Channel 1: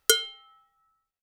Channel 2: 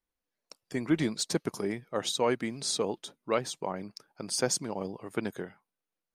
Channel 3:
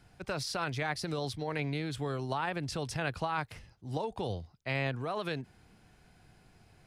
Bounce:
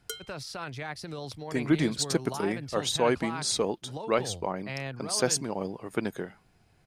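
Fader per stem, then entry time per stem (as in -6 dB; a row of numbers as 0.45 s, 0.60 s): -17.5 dB, +2.5 dB, -3.5 dB; 0.00 s, 0.80 s, 0.00 s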